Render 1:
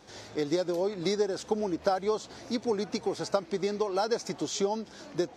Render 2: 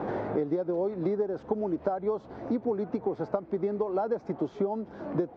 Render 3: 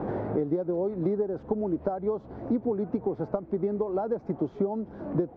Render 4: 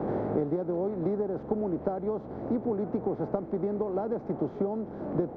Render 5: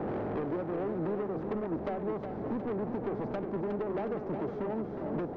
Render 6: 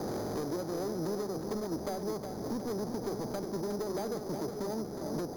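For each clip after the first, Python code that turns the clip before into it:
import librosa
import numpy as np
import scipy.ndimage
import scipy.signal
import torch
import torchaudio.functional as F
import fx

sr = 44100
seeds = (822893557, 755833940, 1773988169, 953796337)

y1 = scipy.signal.sosfilt(scipy.signal.butter(2, 1000.0, 'lowpass', fs=sr, output='sos'), x)
y1 = fx.band_squash(y1, sr, depth_pct=100)
y2 = fx.tilt_eq(y1, sr, slope=-2.5)
y2 = y2 * 10.0 ** (-2.5 / 20.0)
y3 = fx.bin_compress(y2, sr, power=0.6)
y3 = fx.band_widen(y3, sr, depth_pct=40)
y3 = y3 * 10.0 ** (-4.5 / 20.0)
y4 = 10.0 ** (-30.0 / 20.0) * np.tanh(y3 / 10.0 ** (-30.0 / 20.0))
y4 = fx.echo_feedback(y4, sr, ms=363, feedback_pct=52, wet_db=-7)
y5 = np.repeat(scipy.signal.resample_poly(y4, 1, 8), 8)[:len(y4)]
y5 = y5 * 10.0 ** (-1.5 / 20.0)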